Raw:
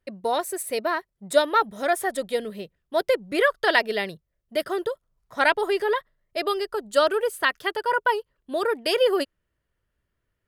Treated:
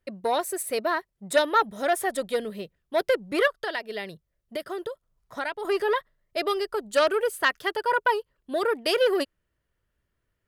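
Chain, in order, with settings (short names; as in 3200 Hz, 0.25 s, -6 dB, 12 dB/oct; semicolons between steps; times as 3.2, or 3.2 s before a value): 3.47–5.65 compressor 3:1, threshold -31 dBFS, peak gain reduction 13 dB; core saturation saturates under 1300 Hz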